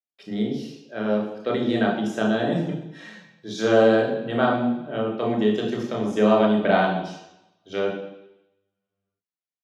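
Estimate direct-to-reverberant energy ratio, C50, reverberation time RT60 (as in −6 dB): −1.0 dB, 4.5 dB, 0.85 s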